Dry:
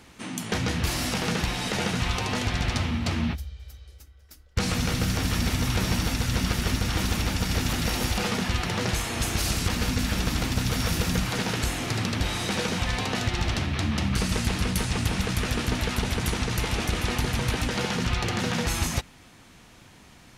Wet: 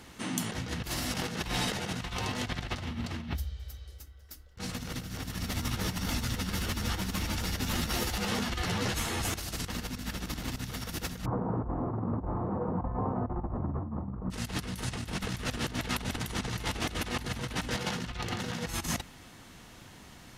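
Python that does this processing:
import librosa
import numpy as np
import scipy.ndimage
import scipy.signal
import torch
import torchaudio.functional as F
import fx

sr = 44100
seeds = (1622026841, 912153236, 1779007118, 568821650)

y = fx.ensemble(x, sr, at=(5.36, 9.32), fade=0.02)
y = fx.cheby1_lowpass(y, sr, hz=1100.0, order=4, at=(11.24, 14.3), fade=0.02)
y = fx.notch(y, sr, hz=2400.0, q=15.0)
y = fx.over_compress(y, sr, threshold_db=-30.0, ratio=-0.5)
y = fx.peak_eq(y, sr, hz=14000.0, db=5.0, octaves=0.26)
y = y * 10.0 ** (-3.0 / 20.0)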